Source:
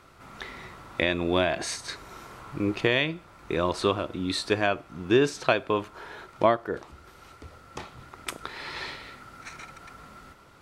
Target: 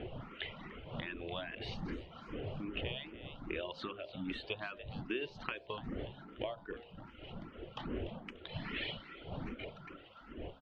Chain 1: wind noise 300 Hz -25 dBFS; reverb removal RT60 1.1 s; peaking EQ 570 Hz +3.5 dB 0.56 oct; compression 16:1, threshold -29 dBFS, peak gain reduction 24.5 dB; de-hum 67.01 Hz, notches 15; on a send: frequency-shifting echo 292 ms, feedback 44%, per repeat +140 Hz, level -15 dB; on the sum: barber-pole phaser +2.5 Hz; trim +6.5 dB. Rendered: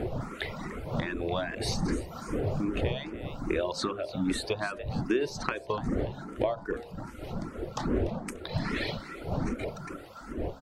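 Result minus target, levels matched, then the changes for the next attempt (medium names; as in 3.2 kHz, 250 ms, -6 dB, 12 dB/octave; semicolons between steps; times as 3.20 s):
4 kHz band -5.0 dB
add after compression: four-pole ladder low-pass 3.2 kHz, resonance 75%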